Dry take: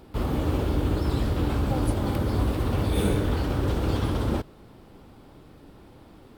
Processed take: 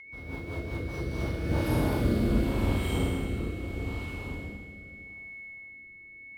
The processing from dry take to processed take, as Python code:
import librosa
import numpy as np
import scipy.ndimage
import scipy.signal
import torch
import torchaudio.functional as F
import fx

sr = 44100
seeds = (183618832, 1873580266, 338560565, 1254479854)

y = fx.doppler_pass(x, sr, speed_mps=42, closest_m=17.0, pass_at_s=1.97)
y = fx.rev_schroeder(y, sr, rt60_s=2.3, comb_ms=26, drr_db=-9.5)
y = y + 10.0 ** (-34.0 / 20.0) * np.sin(2.0 * np.pi * 2200.0 * np.arange(len(y)) / sr)
y = fx.rotary_switch(y, sr, hz=5.0, then_hz=0.8, switch_at_s=0.8)
y = y * librosa.db_to_amplitude(-6.5)